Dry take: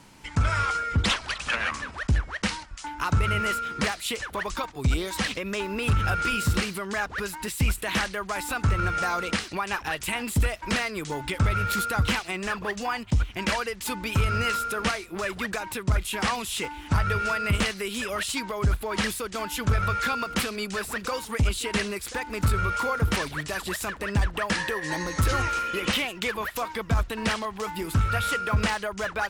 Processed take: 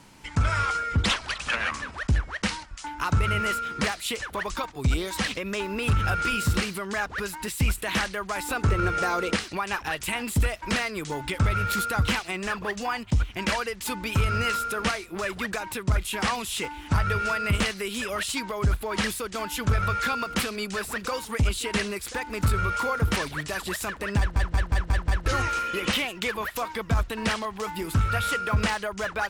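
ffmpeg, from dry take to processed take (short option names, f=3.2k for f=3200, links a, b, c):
-filter_complex "[0:a]asettb=1/sr,asplit=3[a][b][c];[a]atrim=end=8.464[d];[b]atrim=start=8.46:end=9.37,asetpts=PTS-STARTPTS,afade=t=in:d=0.004:c=qsin,afade=t=out:st=0.906:d=0.004:c=qsin,equalizer=f=410:t=o:w=0.77:g=8[e];[c]atrim=start=9.366[f];[d][e]acrossfade=d=0.004:c1=hsin:c2=qsin[g];[g][f]acrossfade=d=0.004:c1=qsin:c2=hsin,asplit=7[h][i][j][k][l][m][n];[h]atrim=end=24.362[o];[i]atrim=start=24.178:end=24.362[p];[j]atrim=start=24.178:end=24.362[q];[k]atrim=start=24.178:end=24.362[r];[l]atrim=start=24.178:end=24.362[s];[m]atrim=start=24.178:end=24.362[t];[n]atrim=start=25.258[u];[o][p]acrossfade=d=0.004:c1=hsin:c2=hsin[v];[v][q]acrossfade=d=0.004:c1=hsin:c2=hsin[w];[w][r]acrossfade=d=0.004:c1=hsin:c2=hsin[x];[x][s]acrossfade=d=0.004:c1=hsin:c2=hsin[y];[y][t]acrossfade=d=0.004:c1=hsin:c2=hsin[z];[z][u]acrossfade=d=0.004:c1=hsin:c2=hsin"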